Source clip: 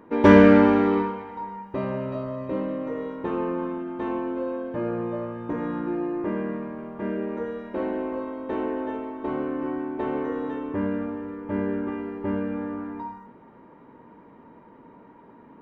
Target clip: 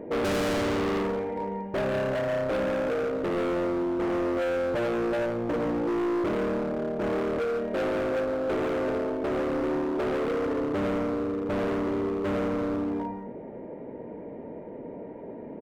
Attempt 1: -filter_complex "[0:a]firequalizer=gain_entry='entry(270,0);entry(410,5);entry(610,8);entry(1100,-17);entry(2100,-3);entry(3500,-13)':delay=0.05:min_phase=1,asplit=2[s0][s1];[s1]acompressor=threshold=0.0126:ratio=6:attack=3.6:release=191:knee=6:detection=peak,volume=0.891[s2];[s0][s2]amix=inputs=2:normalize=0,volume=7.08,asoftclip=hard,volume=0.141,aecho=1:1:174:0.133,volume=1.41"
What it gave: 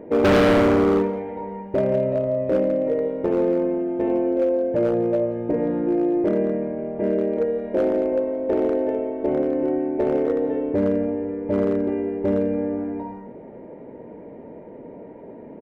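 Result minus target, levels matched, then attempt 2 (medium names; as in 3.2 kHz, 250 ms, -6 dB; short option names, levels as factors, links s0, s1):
overload inside the chain: distortion -5 dB
-filter_complex "[0:a]firequalizer=gain_entry='entry(270,0);entry(410,5);entry(610,8);entry(1100,-17);entry(2100,-3);entry(3500,-13)':delay=0.05:min_phase=1,asplit=2[s0][s1];[s1]acompressor=threshold=0.0126:ratio=6:attack=3.6:release=191:knee=6:detection=peak,volume=0.891[s2];[s0][s2]amix=inputs=2:normalize=0,volume=26.6,asoftclip=hard,volume=0.0376,aecho=1:1:174:0.133,volume=1.41"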